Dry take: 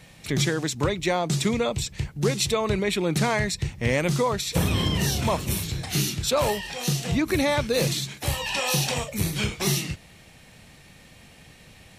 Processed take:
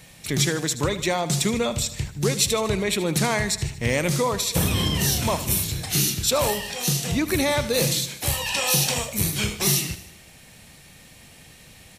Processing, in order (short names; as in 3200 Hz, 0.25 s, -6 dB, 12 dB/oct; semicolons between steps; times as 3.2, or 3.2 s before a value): high shelf 6100 Hz +10 dB; on a send: feedback echo 77 ms, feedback 54%, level -14 dB